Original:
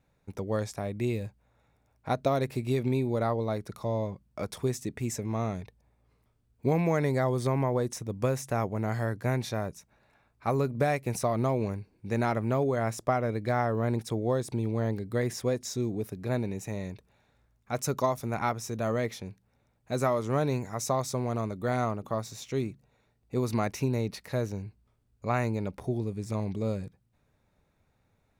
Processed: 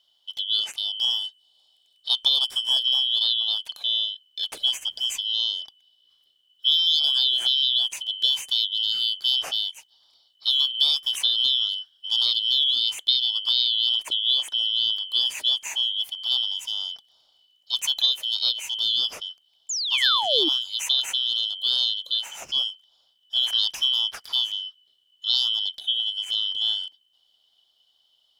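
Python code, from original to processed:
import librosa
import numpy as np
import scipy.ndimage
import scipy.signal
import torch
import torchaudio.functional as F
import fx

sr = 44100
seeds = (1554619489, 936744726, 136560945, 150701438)

y = fx.band_shuffle(x, sr, order='3412')
y = fx.peak_eq(y, sr, hz=8600.0, db=8.5, octaves=0.41, at=(1.19, 2.87))
y = fx.dmg_noise_colour(y, sr, seeds[0], colour='pink', level_db=-72.0, at=(4.53, 5.21), fade=0.02)
y = fx.spec_paint(y, sr, seeds[1], shape='fall', start_s=19.69, length_s=0.8, low_hz=290.0, high_hz=7400.0, level_db=-32.0)
y = y * 10.0 ** (5.0 / 20.0)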